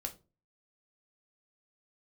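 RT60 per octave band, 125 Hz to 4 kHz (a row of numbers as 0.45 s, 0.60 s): 0.50 s, 0.40 s, 0.35 s, 0.25 s, 0.20 s, 0.20 s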